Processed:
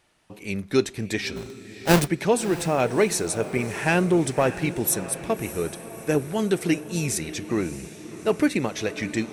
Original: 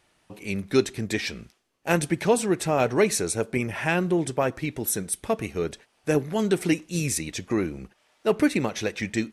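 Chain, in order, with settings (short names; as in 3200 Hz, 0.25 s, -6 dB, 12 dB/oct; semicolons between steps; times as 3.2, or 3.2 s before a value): 1.36–2.08 half-waves squared off; 3.86–4.94 sample leveller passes 1; diffused feedback echo 0.63 s, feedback 55%, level -14 dB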